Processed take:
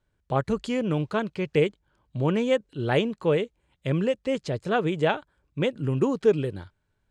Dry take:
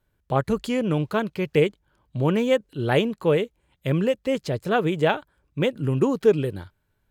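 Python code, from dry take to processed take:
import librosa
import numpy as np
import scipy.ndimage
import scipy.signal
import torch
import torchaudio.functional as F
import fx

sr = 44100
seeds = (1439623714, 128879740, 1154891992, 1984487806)

y = scipy.signal.sosfilt(scipy.signal.butter(4, 8900.0, 'lowpass', fs=sr, output='sos'), x)
y = F.gain(torch.from_numpy(y), -2.5).numpy()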